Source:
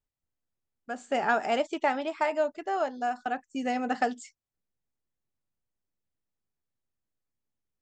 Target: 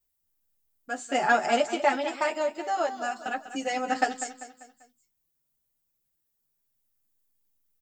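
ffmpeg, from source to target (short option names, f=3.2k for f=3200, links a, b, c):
-filter_complex "[0:a]aemphasis=mode=production:type=50fm,asplit=2[a][b];[b]adelay=14,volume=-11dB[c];[a][c]amix=inputs=2:normalize=0,asplit=2[d][e];[e]aecho=0:1:196|392|588|784:0.237|0.0972|0.0399|0.0163[f];[d][f]amix=inputs=2:normalize=0,asplit=2[g][h];[h]adelay=7.2,afreqshift=-0.28[i];[g][i]amix=inputs=2:normalize=1,volume=5dB"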